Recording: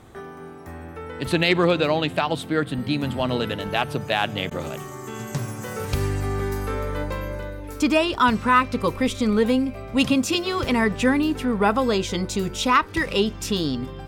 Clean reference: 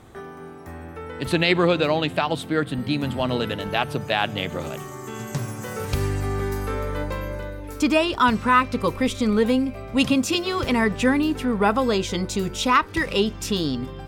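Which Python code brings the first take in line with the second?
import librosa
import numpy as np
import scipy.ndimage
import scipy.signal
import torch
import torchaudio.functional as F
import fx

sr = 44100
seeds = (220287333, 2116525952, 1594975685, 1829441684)

y = fx.fix_declip(x, sr, threshold_db=-7.5)
y = fx.fix_interpolate(y, sr, at_s=(4.5,), length_ms=10.0)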